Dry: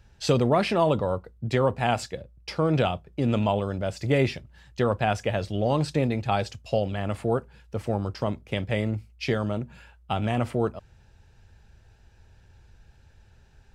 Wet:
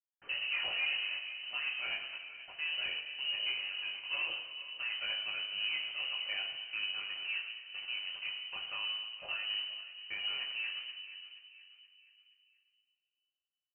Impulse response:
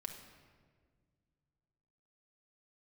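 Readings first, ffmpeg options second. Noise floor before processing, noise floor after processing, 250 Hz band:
-57 dBFS, under -85 dBFS, under -40 dB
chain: -filter_complex "[0:a]bandreject=f=50:t=h:w=6,bandreject=f=100:t=h:w=6,bandreject=f=150:t=h:w=6,bandreject=f=200:t=h:w=6,bandreject=f=250:t=h:w=6,bandreject=f=300:t=h:w=6,flanger=delay=19:depth=2.1:speed=0.18,aeval=exprs='(tanh(12.6*val(0)+0.05)-tanh(0.05))/12.6':c=same,aresample=16000,aeval=exprs='val(0)*gte(abs(val(0)),0.0133)':c=same,aresample=44100,asplit=2[a][b];[b]adelay=476,lowpass=f=2.2k:p=1,volume=-13.5dB,asplit=2[c][d];[d]adelay=476,lowpass=f=2.2k:p=1,volume=0.45,asplit=2[e][f];[f]adelay=476,lowpass=f=2.2k:p=1,volume=0.45,asplit=2[g][h];[h]adelay=476,lowpass=f=2.2k:p=1,volume=0.45[i];[a][c][e][g][i]amix=inputs=5:normalize=0[j];[1:a]atrim=start_sample=2205[k];[j][k]afir=irnorm=-1:irlink=0,lowpass=f=2.6k:t=q:w=0.5098,lowpass=f=2.6k:t=q:w=0.6013,lowpass=f=2.6k:t=q:w=0.9,lowpass=f=2.6k:t=q:w=2.563,afreqshift=-3100,volume=-5.5dB"

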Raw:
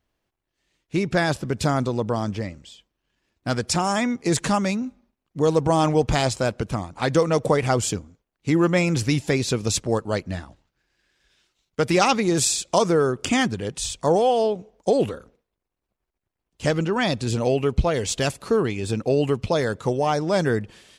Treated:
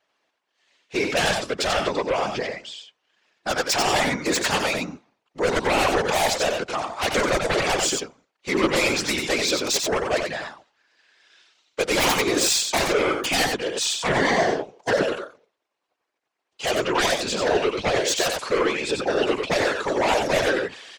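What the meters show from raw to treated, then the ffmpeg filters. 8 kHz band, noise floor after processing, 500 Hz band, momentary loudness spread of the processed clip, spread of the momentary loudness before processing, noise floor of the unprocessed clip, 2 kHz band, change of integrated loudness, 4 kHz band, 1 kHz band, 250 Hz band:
+2.5 dB, -79 dBFS, -0.5 dB, 9 LU, 9 LU, -83 dBFS, +5.5 dB, 0.0 dB, +6.0 dB, +1.0 dB, -4.5 dB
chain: -filter_complex "[0:a]highpass=560,lowpass=5.9k,aeval=exprs='0.631*sin(PI/2*7.94*val(0)/0.631)':c=same,asplit=2[a][b];[b]aecho=0:1:91:0.596[c];[a][c]amix=inputs=2:normalize=0,afftfilt=real='hypot(re,im)*cos(2*PI*random(0))':imag='hypot(re,im)*sin(2*PI*random(1))':win_size=512:overlap=0.75,volume=-7.5dB"

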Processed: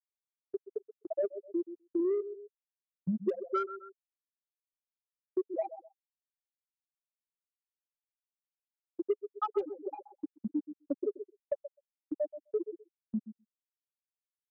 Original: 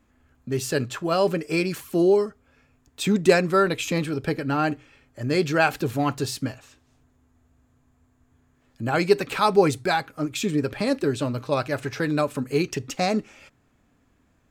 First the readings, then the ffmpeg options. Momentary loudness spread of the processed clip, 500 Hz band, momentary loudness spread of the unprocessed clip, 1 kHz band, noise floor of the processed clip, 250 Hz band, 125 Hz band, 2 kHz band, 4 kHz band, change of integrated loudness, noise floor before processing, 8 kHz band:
14 LU, -12.5 dB, 10 LU, -16.5 dB, under -85 dBFS, -13.0 dB, -22.5 dB, under -30 dB, under -30 dB, -13.0 dB, -65 dBFS, under -40 dB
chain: -filter_complex "[0:a]afftfilt=real='re*gte(hypot(re,im),0.891)':imag='im*gte(hypot(re,im),0.891)':win_size=1024:overlap=0.75,highpass=190,highshelf=f=2k:t=q:w=3:g=-8.5,asplit=2[a][b];[b]adelay=128,lowpass=f=4.9k:p=1,volume=-15dB,asplit=2[c][d];[d]adelay=128,lowpass=f=4.9k:p=1,volume=0.2[e];[a][c][e]amix=inputs=3:normalize=0,adynamicequalizer=threshold=0.0282:dfrequency=420:dqfactor=4.9:tfrequency=420:tqfactor=4.9:attack=5:release=100:ratio=0.375:range=2:mode=boostabove:tftype=bell,aeval=exprs='0.531*(cos(1*acos(clip(val(0)/0.531,-1,1)))-cos(1*PI/2))+0.0133*(cos(7*acos(clip(val(0)/0.531,-1,1)))-cos(7*PI/2))':c=same,agate=range=-11dB:threshold=-47dB:ratio=16:detection=peak,acompressor=threshold=-28dB:ratio=12,bandreject=f=810:w=12"

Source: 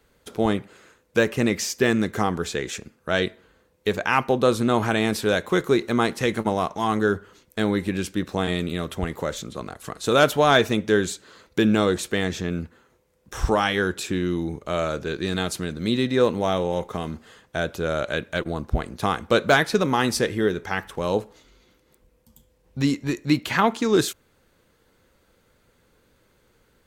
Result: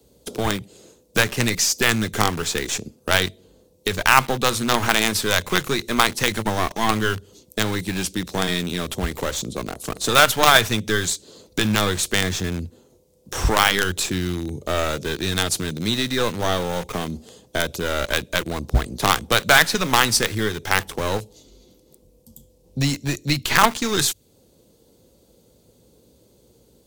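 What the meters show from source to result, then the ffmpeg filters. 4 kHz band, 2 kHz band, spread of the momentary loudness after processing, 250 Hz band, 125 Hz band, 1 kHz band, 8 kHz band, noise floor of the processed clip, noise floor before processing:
+8.0 dB, +5.5 dB, 12 LU, -2.5 dB, +2.5 dB, +3.5 dB, +10.5 dB, -58 dBFS, -64 dBFS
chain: -filter_complex "[0:a]highpass=47,acrossover=split=140|750|3500[a][b][c][d];[a]flanger=delay=16:depth=5.7:speed=0.11[e];[b]acompressor=threshold=-36dB:ratio=6[f];[c]acrusher=bits=4:dc=4:mix=0:aa=0.000001[g];[e][f][g][d]amix=inputs=4:normalize=0,alimiter=level_in=10dB:limit=-1dB:release=50:level=0:latency=1,volume=-1dB"

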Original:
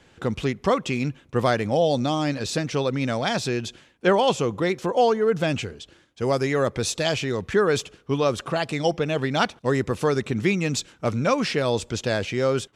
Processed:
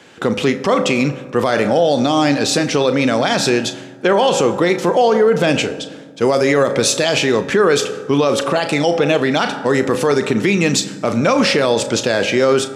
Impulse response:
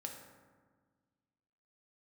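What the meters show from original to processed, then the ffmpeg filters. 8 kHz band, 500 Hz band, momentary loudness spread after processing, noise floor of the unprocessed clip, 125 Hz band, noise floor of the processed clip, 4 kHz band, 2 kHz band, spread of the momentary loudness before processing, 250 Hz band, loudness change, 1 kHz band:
+11.0 dB, +8.5 dB, 5 LU, -56 dBFS, +3.5 dB, -34 dBFS, +9.5 dB, +9.0 dB, 6 LU, +8.5 dB, +8.0 dB, +7.0 dB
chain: -filter_complex "[0:a]highpass=200,asplit=2[a][b];[1:a]atrim=start_sample=2205,adelay=35[c];[b][c]afir=irnorm=-1:irlink=0,volume=-8dB[d];[a][d]amix=inputs=2:normalize=0,alimiter=level_in=16dB:limit=-1dB:release=50:level=0:latency=1,volume=-4dB"

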